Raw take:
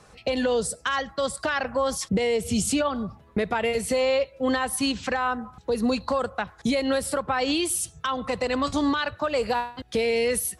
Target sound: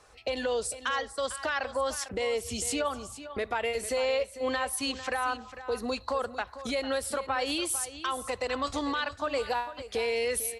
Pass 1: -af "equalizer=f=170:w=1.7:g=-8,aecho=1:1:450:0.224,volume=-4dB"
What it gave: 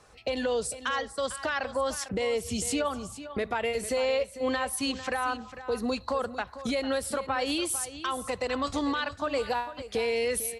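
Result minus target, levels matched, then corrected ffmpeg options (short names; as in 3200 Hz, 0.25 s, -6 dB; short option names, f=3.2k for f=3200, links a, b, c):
125 Hz band +3.0 dB
-af "equalizer=f=170:w=1.7:g=-19.5,aecho=1:1:450:0.224,volume=-4dB"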